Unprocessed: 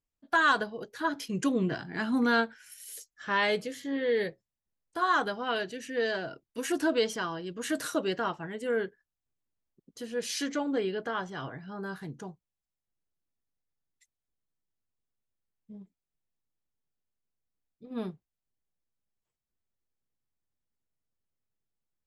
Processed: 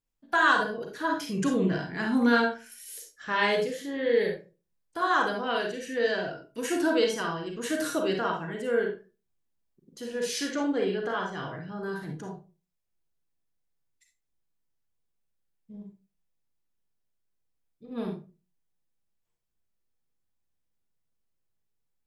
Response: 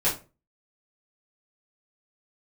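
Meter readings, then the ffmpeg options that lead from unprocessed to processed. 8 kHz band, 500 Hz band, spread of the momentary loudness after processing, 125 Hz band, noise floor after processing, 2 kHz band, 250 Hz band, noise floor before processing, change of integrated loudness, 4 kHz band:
+1.5 dB, +3.5 dB, 17 LU, +3.5 dB, -79 dBFS, +2.5 dB, +3.0 dB, under -85 dBFS, +2.5 dB, +1.5 dB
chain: -filter_complex "[0:a]asplit=2[a][b];[1:a]atrim=start_sample=2205,adelay=34[c];[b][c]afir=irnorm=-1:irlink=0,volume=-13dB[d];[a][d]amix=inputs=2:normalize=0"

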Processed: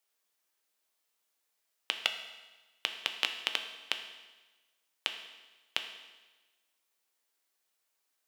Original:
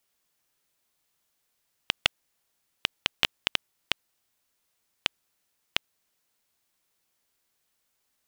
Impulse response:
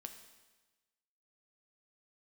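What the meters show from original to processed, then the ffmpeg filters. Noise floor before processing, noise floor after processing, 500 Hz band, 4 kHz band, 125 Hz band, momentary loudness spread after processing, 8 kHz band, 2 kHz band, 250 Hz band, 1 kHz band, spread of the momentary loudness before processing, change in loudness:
-77 dBFS, -80 dBFS, -4.5 dB, -3.5 dB, under -20 dB, 17 LU, -4.0 dB, -4.0 dB, -9.5 dB, -4.0 dB, 5 LU, -4.5 dB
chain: -filter_complex "[0:a]highpass=350[a];[1:a]atrim=start_sample=2205[b];[a][b]afir=irnorm=-1:irlink=0,volume=1dB"

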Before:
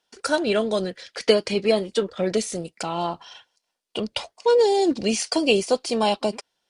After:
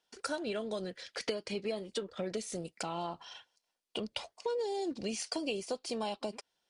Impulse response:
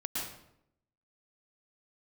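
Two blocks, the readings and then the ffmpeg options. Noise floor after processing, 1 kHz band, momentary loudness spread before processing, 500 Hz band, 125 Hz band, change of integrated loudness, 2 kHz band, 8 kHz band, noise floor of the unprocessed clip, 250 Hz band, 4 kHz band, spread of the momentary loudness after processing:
-84 dBFS, -14.0 dB, 11 LU, -15.5 dB, -12.5 dB, -15.0 dB, -13.5 dB, -12.0 dB, -78 dBFS, -14.0 dB, -13.0 dB, 6 LU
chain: -af "acompressor=threshold=-29dB:ratio=4,volume=-5.5dB"

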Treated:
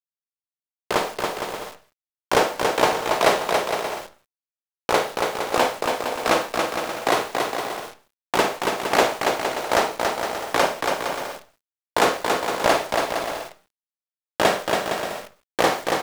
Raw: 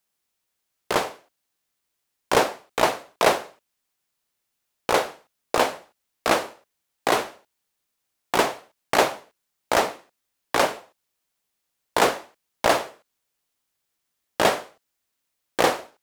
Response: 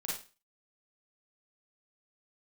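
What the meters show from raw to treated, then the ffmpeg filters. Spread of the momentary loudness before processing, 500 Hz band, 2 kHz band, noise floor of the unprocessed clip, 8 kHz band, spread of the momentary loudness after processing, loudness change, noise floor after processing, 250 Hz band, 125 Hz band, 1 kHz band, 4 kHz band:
13 LU, +3.0 dB, +3.0 dB, -79 dBFS, +2.0 dB, 11 LU, +1.0 dB, under -85 dBFS, +3.0 dB, +3.0 dB, +3.0 dB, +3.0 dB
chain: -filter_complex "[0:a]aecho=1:1:280|462|580.3|657.2|707.2:0.631|0.398|0.251|0.158|0.1,asplit=2[a][b];[1:a]atrim=start_sample=2205,lowpass=8.6k[c];[b][c]afir=irnorm=-1:irlink=0,volume=-7.5dB[d];[a][d]amix=inputs=2:normalize=0,acrusher=bits=7:dc=4:mix=0:aa=0.000001,volume=-1.5dB"

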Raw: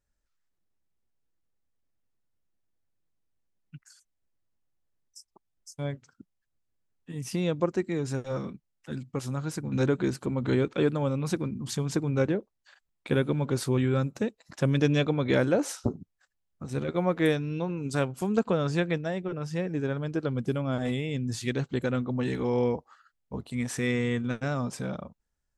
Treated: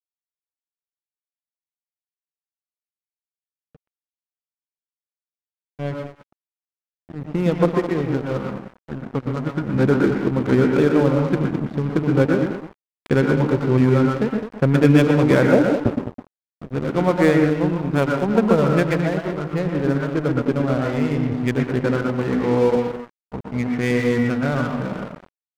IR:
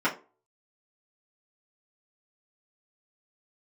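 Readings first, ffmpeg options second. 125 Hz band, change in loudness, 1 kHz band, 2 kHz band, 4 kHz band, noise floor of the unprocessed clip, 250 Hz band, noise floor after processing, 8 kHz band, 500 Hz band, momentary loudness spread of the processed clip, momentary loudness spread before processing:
+8.0 dB, +9.5 dB, +10.5 dB, +9.0 dB, +3.0 dB, -79 dBFS, +10.0 dB, under -85 dBFS, n/a, +9.5 dB, 13 LU, 11 LU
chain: -filter_complex "[0:a]lowpass=2.7k,asplit=2[a][b];[b]adelay=209.9,volume=-9dB,highshelf=f=4k:g=-4.72[c];[a][c]amix=inputs=2:normalize=0,adynamicsmooth=sensitivity=8:basefreq=890,asplit=2[d][e];[1:a]atrim=start_sample=2205,adelay=114[f];[e][f]afir=irnorm=-1:irlink=0,volume=-15.5dB[g];[d][g]amix=inputs=2:normalize=0,aeval=exprs='sgn(val(0))*max(abs(val(0))-0.0106,0)':c=same,volume=8.5dB"

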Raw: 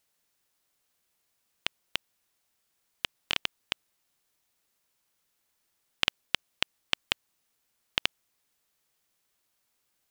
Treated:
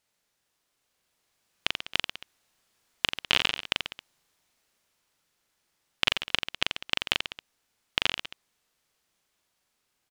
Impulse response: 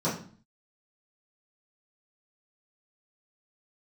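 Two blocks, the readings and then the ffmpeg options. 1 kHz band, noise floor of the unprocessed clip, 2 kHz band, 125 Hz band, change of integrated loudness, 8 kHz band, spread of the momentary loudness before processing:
+5.0 dB, -77 dBFS, +5.0 dB, +5.0 dB, +4.0 dB, +2.5 dB, 7 LU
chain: -af "aecho=1:1:40|86|138.9|199.7|269.7:0.631|0.398|0.251|0.158|0.1,dynaudnorm=f=410:g=7:m=11.5dB,highshelf=f=11k:g=-11.5"

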